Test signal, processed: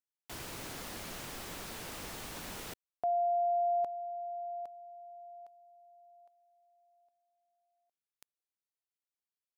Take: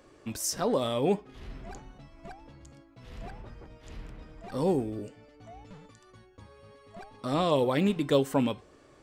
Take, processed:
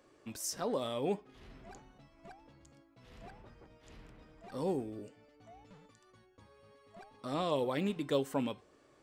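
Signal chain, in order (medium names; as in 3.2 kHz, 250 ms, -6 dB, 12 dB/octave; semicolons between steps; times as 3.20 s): bass shelf 100 Hz -8.5 dB; trim -7 dB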